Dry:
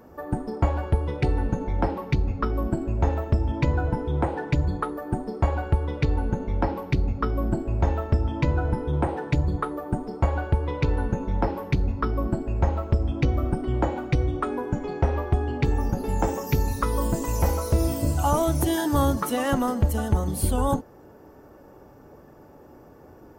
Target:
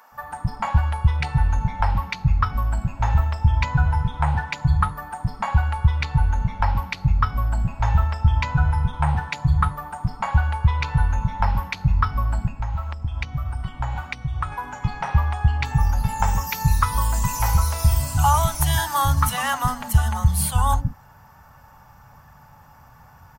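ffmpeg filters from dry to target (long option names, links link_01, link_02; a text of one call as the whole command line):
ffmpeg -i in.wav -filter_complex "[0:a]firequalizer=gain_entry='entry(140,0);entry(340,-26);entry(860,2)':delay=0.05:min_phase=1,asettb=1/sr,asplit=3[link_01][link_02][link_03];[link_01]atrim=end=12.474[link_04];[link_02]atrim=start=12.47:end=14.52,asetpts=PTS-STARTPTS,afade=type=in:duration=0.004:curve=qsin,afade=type=out:start_time=2.046:duration=0.004:curve=qsin,acompressor=threshold=-28dB:ratio=6[link_05];[link_03]atrim=start=14.516[link_06];[link_04][link_05]acrossfade=duration=0.004:curve1=hsin:curve2=qsin[link_07];[link_07][link_06]acrossfade=duration=0.004:curve1=qsin:curve2=hsin,acrossover=split=350[link_08][link_09];[link_08]adelay=120[link_10];[link_10][link_09]amix=inputs=2:normalize=0,volume=5dB" out.wav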